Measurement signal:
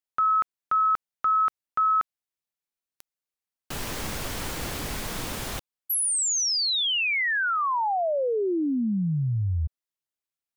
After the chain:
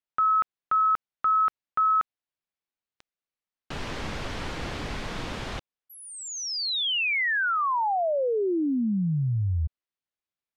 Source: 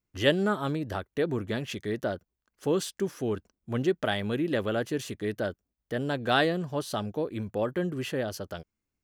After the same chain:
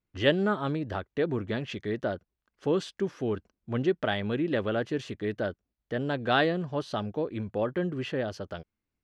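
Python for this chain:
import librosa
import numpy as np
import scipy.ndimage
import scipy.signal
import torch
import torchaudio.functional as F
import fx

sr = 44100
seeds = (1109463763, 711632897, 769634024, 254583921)

y = scipy.signal.sosfilt(scipy.signal.butter(2, 4000.0, 'lowpass', fs=sr, output='sos'), x)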